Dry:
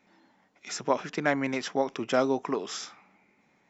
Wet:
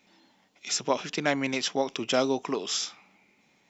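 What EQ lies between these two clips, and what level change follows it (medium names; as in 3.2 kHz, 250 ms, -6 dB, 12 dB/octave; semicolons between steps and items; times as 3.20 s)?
resonant high shelf 2.3 kHz +7 dB, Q 1.5; 0.0 dB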